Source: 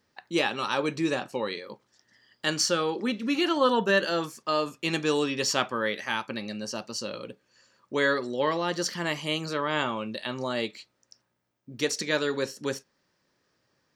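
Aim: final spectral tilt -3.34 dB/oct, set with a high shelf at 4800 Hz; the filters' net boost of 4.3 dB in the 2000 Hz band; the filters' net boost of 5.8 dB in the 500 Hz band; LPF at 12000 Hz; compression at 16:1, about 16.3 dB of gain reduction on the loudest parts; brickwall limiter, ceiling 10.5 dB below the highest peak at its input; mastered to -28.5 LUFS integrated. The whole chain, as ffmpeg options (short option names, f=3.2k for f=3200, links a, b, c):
-af "lowpass=12k,equalizer=f=500:t=o:g=6.5,equalizer=f=2k:t=o:g=4.5,highshelf=f=4.8k:g=3.5,acompressor=threshold=-29dB:ratio=16,volume=7dB,alimiter=limit=-16.5dB:level=0:latency=1"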